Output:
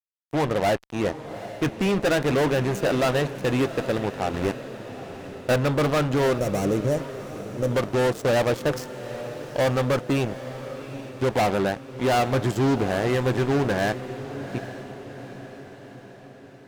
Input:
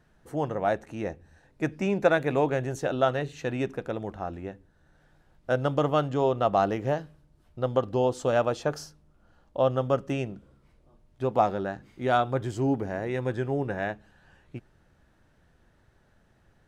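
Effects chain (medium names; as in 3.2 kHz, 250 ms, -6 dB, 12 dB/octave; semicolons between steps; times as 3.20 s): fuzz box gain 30 dB, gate -39 dBFS; 4.34–5.56 s: waveshaping leveller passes 3; 6.38–7.71 s: time-frequency box 640–5300 Hz -11 dB; on a send: echo that smears into a reverb 810 ms, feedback 55%, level -12.5 dB; on the sum: trim -5 dB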